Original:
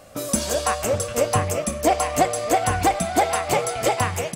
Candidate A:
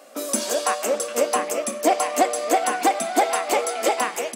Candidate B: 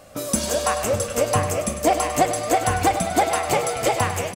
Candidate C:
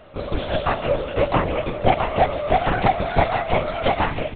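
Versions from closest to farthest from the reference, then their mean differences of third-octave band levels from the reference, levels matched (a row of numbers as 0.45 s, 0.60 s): B, A, C; 2.0 dB, 4.0 dB, 11.0 dB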